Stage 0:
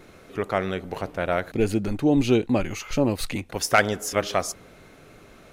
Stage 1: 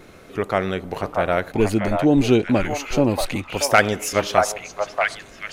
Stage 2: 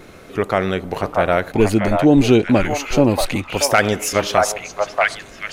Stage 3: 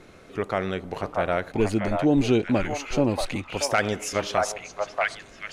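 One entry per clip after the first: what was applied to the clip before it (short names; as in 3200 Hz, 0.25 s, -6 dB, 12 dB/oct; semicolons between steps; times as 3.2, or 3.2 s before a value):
delay with a stepping band-pass 0.633 s, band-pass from 840 Hz, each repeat 1.4 oct, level 0 dB; gain +3.5 dB
maximiser +5 dB; gain -1 dB
LPF 9700 Hz 12 dB/oct; gain -8 dB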